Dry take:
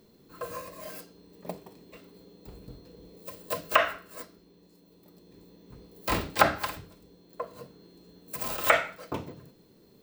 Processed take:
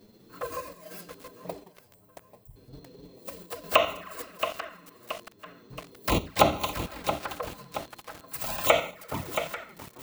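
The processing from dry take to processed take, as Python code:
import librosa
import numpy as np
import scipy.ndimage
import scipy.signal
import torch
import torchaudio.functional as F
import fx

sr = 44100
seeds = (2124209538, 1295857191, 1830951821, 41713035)

p1 = fx.ellip_bandstop(x, sr, low_hz=110.0, high_hz=8700.0, order=3, stop_db=40, at=(1.72, 2.56))
p2 = fx.peak_eq(p1, sr, hz=460.0, db=-11.5, octaves=1.6, at=(7.47, 8.48))
p3 = fx.level_steps(p2, sr, step_db=10)
p4 = p2 + (p3 * librosa.db_to_amplitude(2.5))
p5 = fx.rev_schroeder(p4, sr, rt60_s=2.3, comb_ms=30, drr_db=17.5)
p6 = fx.chopper(p5, sr, hz=1.1, depth_pct=60, duty_pct=80)
p7 = p6 + fx.echo_feedback(p6, sr, ms=839, feedback_pct=33, wet_db=-18, dry=0)
p8 = fx.env_flanger(p7, sr, rest_ms=10.7, full_db=-21.5)
y = fx.echo_crushed(p8, sr, ms=675, feedback_pct=55, bits=6, wet_db=-8)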